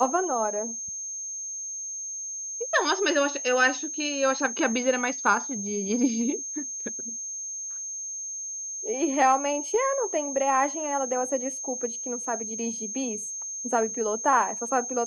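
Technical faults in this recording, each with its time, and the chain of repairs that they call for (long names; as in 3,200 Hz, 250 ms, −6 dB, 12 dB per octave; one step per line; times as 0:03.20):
whistle 6,400 Hz −32 dBFS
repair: notch filter 6,400 Hz, Q 30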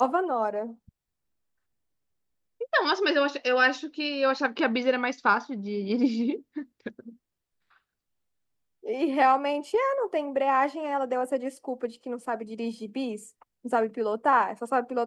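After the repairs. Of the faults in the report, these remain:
none of them is left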